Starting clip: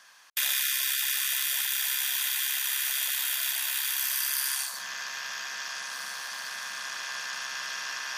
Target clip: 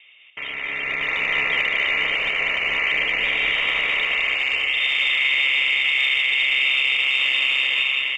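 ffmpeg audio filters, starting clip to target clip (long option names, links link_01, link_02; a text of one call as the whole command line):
ffmpeg -i in.wav -filter_complex "[0:a]asplit=2[link_01][link_02];[link_02]adelay=122,lowpass=frequency=2000:poles=1,volume=-22dB,asplit=2[link_03][link_04];[link_04]adelay=122,lowpass=frequency=2000:poles=1,volume=0.37,asplit=2[link_05][link_06];[link_06]adelay=122,lowpass=frequency=2000:poles=1,volume=0.37[link_07];[link_03][link_05][link_07]amix=inputs=3:normalize=0[link_08];[link_01][link_08]amix=inputs=2:normalize=0,dynaudnorm=framelen=130:gausssize=13:maxgain=13.5dB,equalizer=frequency=160:width=1:gain=13,asettb=1/sr,asplit=3[link_09][link_10][link_11];[link_09]atrim=end=3.234[link_12];[link_10]atrim=start=3.23:end=3.94,asetpts=PTS-STARTPTS,afade=type=in:duration=0.004:curve=qsin,afade=type=out:start_time=0.706:duration=0.004:curve=qsin,acrusher=bits=4:mode=log:mix=0:aa=0.000001[link_13];[link_11]atrim=start=3.936[link_14];[link_12][link_13]acrossfade=duration=0.004:curve1=hsin:curve2=qsin[link_15];[link_15][link_14]acrossfade=duration=0.004:curve1=qsin:curve2=hsin,lowpass=frequency=3200:width_type=q:width=0.5098,lowpass=frequency=3200:width_type=q:width=0.6013,lowpass=frequency=3200:width_type=q:width=0.9,lowpass=frequency=3200:width_type=q:width=2.563,afreqshift=-3800,asubboost=boost=2.5:cutoff=68,aexciter=amount=10.9:drive=6.2:freq=2300,asplit=2[link_16][link_17];[link_17]aecho=0:1:208:0.501[link_18];[link_16][link_18]amix=inputs=2:normalize=0,alimiter=level_in=1dB:limit=-1dB:release=50:level=0:latency=1,volume=-9dB" out.wav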